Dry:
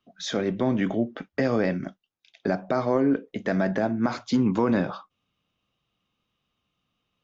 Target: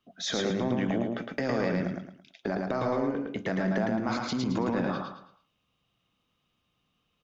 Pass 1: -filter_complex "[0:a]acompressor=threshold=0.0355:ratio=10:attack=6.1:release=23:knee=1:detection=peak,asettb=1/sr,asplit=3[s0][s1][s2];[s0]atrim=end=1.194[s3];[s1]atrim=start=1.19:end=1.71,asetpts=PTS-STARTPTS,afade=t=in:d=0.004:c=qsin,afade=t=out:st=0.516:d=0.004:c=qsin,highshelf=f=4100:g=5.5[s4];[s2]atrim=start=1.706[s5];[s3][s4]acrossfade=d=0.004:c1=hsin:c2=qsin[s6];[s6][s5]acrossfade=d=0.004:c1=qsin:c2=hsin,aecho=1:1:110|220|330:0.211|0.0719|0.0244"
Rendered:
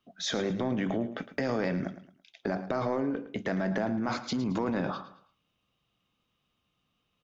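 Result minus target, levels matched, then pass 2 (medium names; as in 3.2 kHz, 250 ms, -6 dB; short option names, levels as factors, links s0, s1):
echo-to-direct -10.5 dB
-filter_complex "[0:a]acompressor=threshold=0.0355:ratio=10:attack=6.1:release=23:knee=1:detection=peak,asettb=1/sr,asplit=3[s0][s1][s2];[s0]atrim=end=1.194[s3];[s1]atrim=start=1.19:end=1.71,asetpts=PTS-STARTPTS,afade=t=in:d=0.004:c=qsin,afade=t=out:st=0.516:d=0.004:c=qsin,highshelf=f=4100:g=5.5[s4];[s2]atrim=start=1.706[s5];[s3][s4]acrossfade=d=0.004:c1=hsin:c2=qsin[s6];[s6][s5]acrossfade=d=0.004:c1=qsin:c2=hsin,aecho=1:1:110|220|330|440:0.708|0.241|0.0818|0.0278"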